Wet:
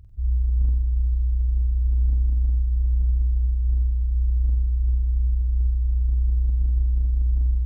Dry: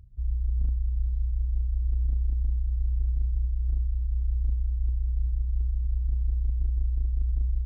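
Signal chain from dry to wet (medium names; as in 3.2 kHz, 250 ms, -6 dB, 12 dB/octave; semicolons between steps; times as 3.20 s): 3.02–4.02 s: comb of notches 160 Hz; flutter echo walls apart 8.1 m, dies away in 0.63 s; trim +3 dB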